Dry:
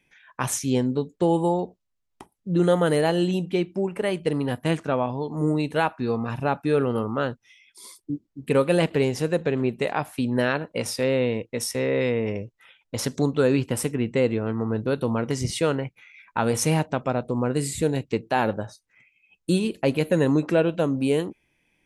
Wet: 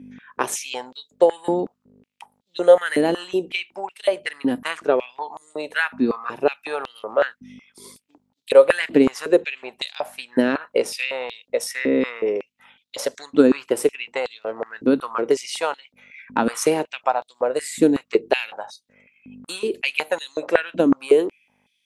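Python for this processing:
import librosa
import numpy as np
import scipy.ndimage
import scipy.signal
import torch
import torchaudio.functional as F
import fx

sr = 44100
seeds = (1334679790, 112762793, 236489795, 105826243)

y = fx.add_hum(x, sr, base_hz=50, snr_db=12)
y = fx.transient(y, sr, attack_db=6, sustain_db=2)
y = fx.filter_held_highpass(y, sr, hz=5.4, low_hz=270.0, high_hz=3700.0)
y = y * librosa.db_to_amplitude(-1.5)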